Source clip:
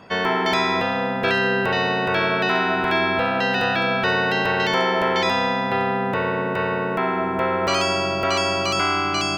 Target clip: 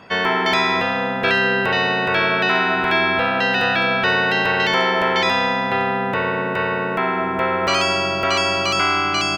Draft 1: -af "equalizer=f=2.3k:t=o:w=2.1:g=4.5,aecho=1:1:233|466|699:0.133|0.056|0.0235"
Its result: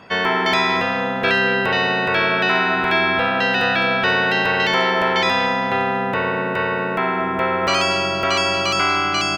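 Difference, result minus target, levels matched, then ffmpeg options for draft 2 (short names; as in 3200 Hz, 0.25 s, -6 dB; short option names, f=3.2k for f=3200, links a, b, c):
echo-to-direct +8.5 dB
-af "equalizer=f=2.3k:t=o:w=2.1:g=4.5,aecho=1:1:233|466:0.0501|0.021"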